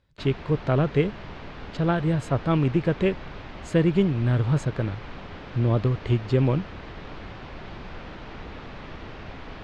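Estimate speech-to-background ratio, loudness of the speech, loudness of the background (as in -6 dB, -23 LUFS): 16.0 dB, -24.5 LUFS, -40.5 LUFS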